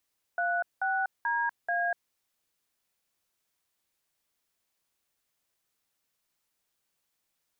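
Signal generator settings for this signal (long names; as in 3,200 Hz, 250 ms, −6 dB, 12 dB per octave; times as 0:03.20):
touch tones "36DA", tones 244 ms, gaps 191 ms, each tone −28.5 dBFS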